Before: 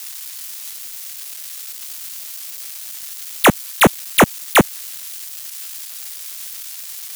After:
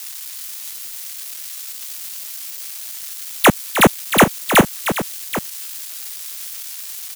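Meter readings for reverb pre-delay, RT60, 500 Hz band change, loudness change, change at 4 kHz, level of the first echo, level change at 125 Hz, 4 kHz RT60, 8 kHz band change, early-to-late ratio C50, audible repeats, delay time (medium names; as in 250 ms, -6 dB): no reverb, no reverb, +0.5 dB, +0.5 dB, +0.5 dB, -10.0 dB, +0.5 dB, no reverb, +0.5 dB, no reverb, 2, 309 ms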